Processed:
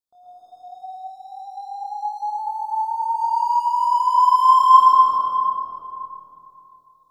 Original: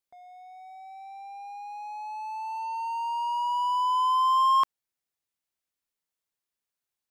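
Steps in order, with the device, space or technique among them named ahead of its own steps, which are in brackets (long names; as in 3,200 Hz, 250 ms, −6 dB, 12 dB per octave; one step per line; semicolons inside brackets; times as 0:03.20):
tunnel (flutter between parallel walls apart 4.3 metres, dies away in 0.3 s; convolution reverb RT60 2.5 s, pre-delay 105 ms, DRR −7 dB)
elliptic band-stop filter 1,400–3,400 Hz, stop band 40 dB
0:02.29–0:03.21: parametric band 4,300 Hz −10 dB 1.2 octaves
comb and all-pass reverb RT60 2.8 s, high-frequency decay 0.25×, pre-delay 75 ms, DRR −4.5 dB
level −5 dB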